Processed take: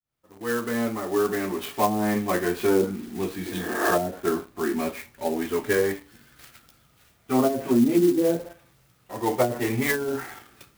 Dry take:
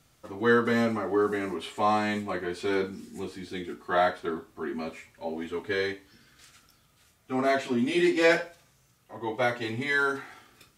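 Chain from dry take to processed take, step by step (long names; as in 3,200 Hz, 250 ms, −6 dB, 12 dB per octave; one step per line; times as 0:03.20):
fade in at the beginning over 2.30 s
on a send at −21 dB: convolution reverb RT60 0.45 s, pre-delay 6 ms
on the sum: healed spectral selection 0:03.46–0:03.88, 240–2,400 Hz both
treble cut that deepens with the level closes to 320 Hz, closed at −20.5 dBFS
in parallel at −6 dB: bit reduction 8 bits
on the sum: converter with an unsteady clock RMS 0.043 ms
level +4 dB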